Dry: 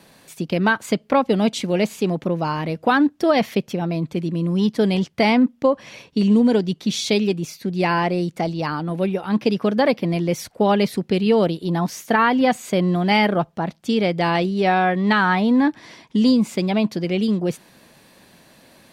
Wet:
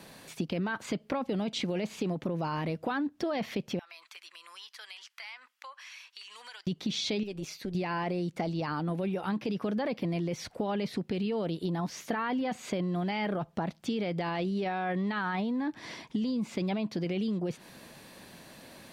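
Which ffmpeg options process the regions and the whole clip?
-filter_complex "[0:a]asettb=1/sr,asplit=3[a][b][c];[a]atrim=end=3.794[d];[b]atrim=start=3.79:end=6.67,asetpts=PTS-STARTPTS,afade=t=in:d=0.004:c=qsin,afade=t=out:st=2.876:d=0.004:c=qsin,highpass=f=1.2k:w=0.5412,highpass=f=1.2k:w=1.3066,bandreject=f=3.6k:w=28,acompressor=threshold=-45dB:ratio=4:attack=3.2:release=140:knee=1:detection=peak[e];[c]atrim=start=6.666[f];[d][e]acrossfade=d=0.004:c1=hsin:c2=qsin[g];[g][f]acrossfade=d=0.004:c1=qsin:c2=hsin,asettb=1/sr,asplit=3[h][i][j];[h]atrim=end=7.234[k];[i]atrim=start=7.23:end=7.75,asetpts=PTS-STARTPTS,afade=t=in:d=0.004:c=qsin,afade=t=out:st=0.516:d=0.004:c=qsin,lowshelf=f=220:g=-8.5,acompressor=threshold=-31dB:ratio=2.5:attack=3.2:release=140:knee=1:detection=peak,tremolo=f=200:d=0.462[l];[j]atrim=start=7.746[m];[k][l]acrossfade=d=0.004:c1=hsin:c2=qsin[n];[n][m]acrossfade=d=0.004:c1=qsin:c2=hsin,acrossover=split=5600[o][p];[p]acompressor=threshold=-53dB:ratio=4:attack=1:release=60[q];[o][q]amix=inputs=2:normalize=0,alimiter=limit=-16.5dB:level=0:latency=1:release=11,acompressor=threshold=-29dB:ratio=6"

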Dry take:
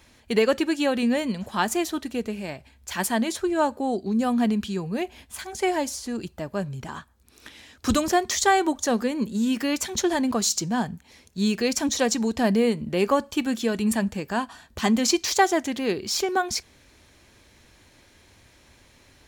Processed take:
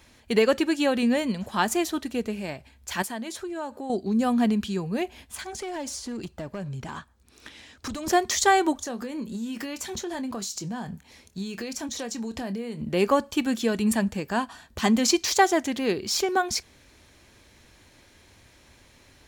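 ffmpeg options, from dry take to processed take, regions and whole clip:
-filter_complex "[0:a]asettb=1/sr,asplit=3[a][b][c];[a]atrim=end=3.024[d];[b]atrim=start=3.02:end=3.9,asetpts=PTS-STARTPTS,afade=t=in:d=0.004:c=qsin,afade=t=out:st=0.876:d=0.004:c=qsin,acompressor=threshold=-34dB:ratio=2.5:attack=3.2:release=140:knee=1:detection=peak,lowshelf=f=120:g=-6.5[e];[c]atrim=start=3.896[f];[d][e]acrossfade=d=0.004:c1=hsin:c2=qsin[g];[g][f]acrossfade=d=0.004:c1=qsin:c2=hsin,asettb=1/sr,asplit=3[h][i][j];[h]atrim=end=5.354[k];[i]atrim=start=5.35:end=8.07,asetpts=PTS-STARTPTS,afade=t=in:d=0.004:c=qsin,afade=t=out:st=2.716:d=0.004:c=qsin,equalizer=f=13k:t=o:w=0.47:g=-10,acompressor=threshold=-28dB:ratio=12:attack=3.2:release=140:knee=1:detection=peak,volume=28.5dB,asoftclip=hard,volume=-28.5dB[l];[j]atrim=start=8.066[m];[k][l]acrossfade=d=0.004:c1=hsin:c2=qsin[n];[n][m]acrossfade=d=0.004:c1=qsin:c2=hsin,asettb=1/sr,asplit=3[o][p][q];[o]atrim=end=8.784[r];[p]atrim=start=8.78:end=12.82,asetpts=PTS-STARTPTS,afade=t=in:d=0.004:c=qsin,afade=t=out:st=4.036:d=0.004:c=qsin,acompressor=threshold=-30dB:ratio=6:attack=3.2:release=140:knee=1:detection=peak,asplit=2[s][t];[t]adelay=26,volume=-12dB[u];[s][u]amix=inputs=2:normalize=0,atrim=end_sample=178164[v];[q]atrim=start=12.816[w];[r][v]acrossfade=d=0.004:c1=hsin:c2=qsin[x];[x][w]acrossfade=d=0.004:c1=qsin:c2=hsin"

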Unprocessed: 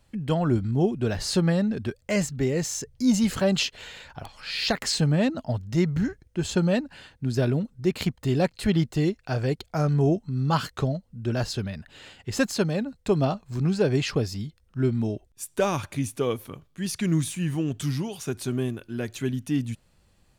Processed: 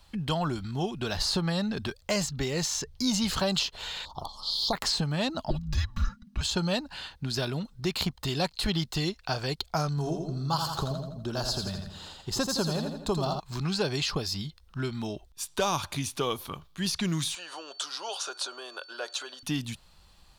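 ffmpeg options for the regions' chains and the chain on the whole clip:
-filter_complex "[0:a]asettb=1/sr,asplit=3[a][b][c];[a]atrim=end=4.054[d];[b]atrim=start=4.05:end=4.73,asetpts=PTS-STARTPTS,afade=t=in:d=0.004:c=qsin,afade=t=out:st=0.676:d=0.004:c=qsin,tremolo=f=220:d=0.519,asuperstop=centerf=2000:order=12:qfactor=0.93[e];[c]atrim=start=4.726[f];[d][e]acrossfade=d=0.004:c1=hsin:c2=qsin[g];[g][f]acrossfade=d=0.004:c1=qsin:c2=hsin,asettb=1/sr,asplit=3[h][i][j];[h]atrim=end=5.504[k];[i]atrim=start=5.5:end=6.41,asetpts=PTS-STARTPTS,afade=t=in:d=0.004:c=qsin,afade=t=out:st=0.906:d=0.004:c=qsin,tiltshelf=f=940:g=8.5,aecho=1:1:3.6:0.85,atrim=end_sample=40131,afreqshift=-260[l];[j]atrim=start=6.406[m];[k][l]acrossfade=d=0.004:c1=hsin:c2=qsin[n];[n][m]acrossfade=d=0.004:c1=qsin:c2=hsin,asettb=1/sr,asplit=3[o][p][q];[o]atrim=end=9.894[r];[p]atrim=start=9.89:end=13.4,asetpts=PTS-STARTPTS,afade=t=in:d=0.004:c=qsin,afade=t=out:st=3.506:d=0.004:c=qsin,equalizer=f=2.3k:t=o:w=1.3:g=-13.5,aecho=1:1:83|166|249|332|415:0.473|0.213|0.0958|0.0431|0.0194,atrim=end_sample=154791[s];[q]atrim=start=13.396[t];[r][s]acrossfade=d=0.004:c1=hsin:c2=qsin[u];[u][t]acrossfade=d=0.004:c1=qsin:c2=hsin,asettb=1/sr,asplit=3[v][w][x];[v]atrim=end=17.354[y];[w]atrim=start=17.35:end=19.43,asetpts=PTS-STARTPTS,afade=t=in:d=0.004:c=qsin,afade=t=out:st=2.076:d=0.004:c=qsin,acompressor=threshold=-28dB:ratio=10:attack=3.2:release=140:knee=1:detection=peak,highpass=f=480:w=0.5412,highpass=f=480:w=1.3066,equalizer=f=550:t=q:w=4:g=8,equalizer=f=1.4k:t=q:w=4:g=7,equalizer=f=2.1k:t=q:w=4:g=-9,lowpass=f=9.2k:w=0.5412,lowpass=f=9.2k:w=1.3066,aeval=exprs='val(0)+0.001*sin(2*PI*4500*n/s)':c=same[z];[x]atrim=start=19.426[aa];[y][z]acrossfade=d=0.004:c1=hsin:c2=qsin[ab];[ab][aa]acrossfade=d=0.004:c1=qsin:c2=hsin,equalizer=f=250:t=o:w=1:g=-8,equalizer=f=500:t=o:w=1:g=-7,equalizer=f=1k:t=o:w=1:g=5,equalizer=f=2k:t=o:w=1:g=-5,equalizer=f=4k:t=o:w=1:g=7,equalizer=f=8k:t=o:w=1:g=-4,acrossover=split=1200|3500|7400[ac][ad][ae][af];[ac]acompressor=threshold=-32dB:ratio=4[ag];[ad]acompressor=threshold=-46dB:ratio=4[ah];[ae]acompressor=threshold=-39dB:ratio=4[ai];[af]acompressor=threshold=-49dB:ratio=4[aj];[ag][ah][ai][aj]amix=inputs=4:normalize=0,equalizer=f=110:w=2.5:g=-11,volume=6.5dB"

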